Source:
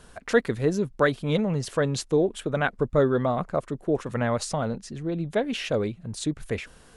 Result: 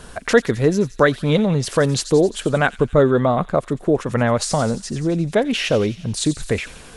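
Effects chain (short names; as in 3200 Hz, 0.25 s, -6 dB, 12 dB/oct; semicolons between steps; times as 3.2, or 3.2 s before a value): in parallel at +1.5 dB: compressor, threshold -31 dBFS, peak gain reduction 16 dB; on the sum: thin delay 88 ms, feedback 67%, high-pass 3600 Hz, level -10 dB; gain +4.5 dB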